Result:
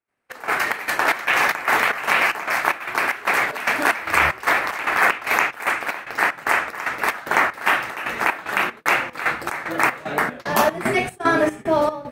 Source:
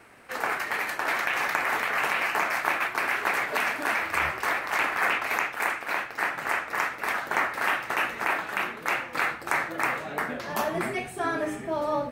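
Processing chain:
gate pattern ".xxx..xxx." 188 BPM −12 dB
noise gate −43 dBFS, range −26 dB
automatic gain control gain up to 11.5 dB

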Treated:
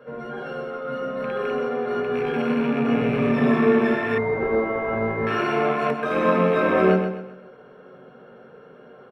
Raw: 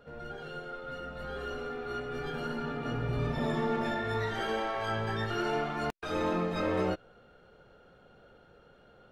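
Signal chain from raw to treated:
loose part that buzzes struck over −39 dBFS, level −31 dBFS
repeating echo 129 ms, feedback 36%, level −8 dB
convolution reverb RT60 0.40 s, pre-delay 3 ms, DRR 1.5 dB
0:04.18–0:05.27: switching amplifier with a slow clock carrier 2,100 Hz
level −1 dB

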